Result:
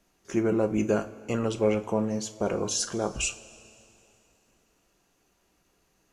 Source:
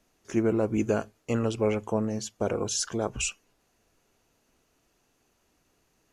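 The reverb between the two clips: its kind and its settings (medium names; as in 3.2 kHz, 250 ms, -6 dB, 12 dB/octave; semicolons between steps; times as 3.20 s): two-slope reverb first 0.28 s, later 2.8 s, from -18 dB, DRR 7 dB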